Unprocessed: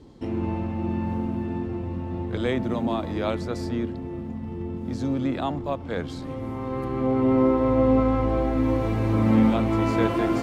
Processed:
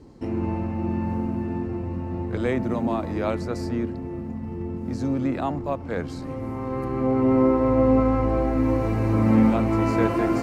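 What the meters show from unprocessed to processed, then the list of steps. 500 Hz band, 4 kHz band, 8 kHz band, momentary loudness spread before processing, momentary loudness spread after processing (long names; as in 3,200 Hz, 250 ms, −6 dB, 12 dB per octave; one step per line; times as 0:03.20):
+1.0 dB, −5.0 dB, can't be measured, 12 LU, 12 LU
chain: parametric band 3,400 Hz −11.5 dB 0.32 octaves
level +1 dB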